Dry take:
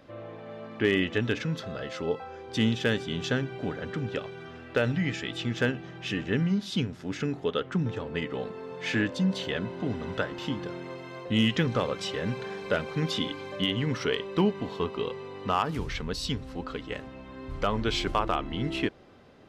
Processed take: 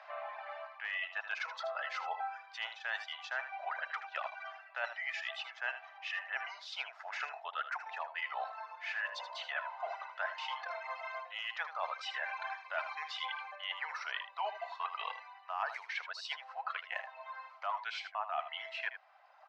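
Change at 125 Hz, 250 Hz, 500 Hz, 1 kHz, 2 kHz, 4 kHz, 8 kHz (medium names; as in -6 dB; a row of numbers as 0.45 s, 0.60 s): under -40 dB, under -40 dB, -16.0 dB, -3.0 dB, -3.0 dB, -9.5 dB, -15.0 dB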